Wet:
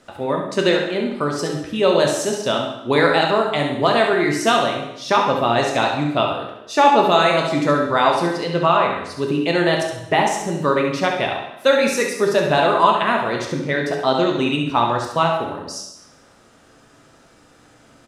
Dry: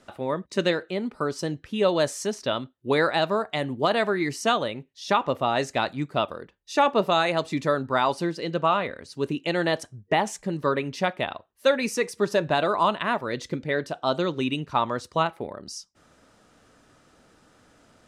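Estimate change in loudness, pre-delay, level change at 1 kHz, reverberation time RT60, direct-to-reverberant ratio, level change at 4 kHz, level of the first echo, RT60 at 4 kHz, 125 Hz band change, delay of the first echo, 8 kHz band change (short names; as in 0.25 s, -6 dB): +7.0 dB, 5 ms, +8.0 dB, 0.90 s, 0.0 dB, +7.0 dB, -7.0 dB, 0.85 s, +6.5 dB, 68 ms, +7.5 dB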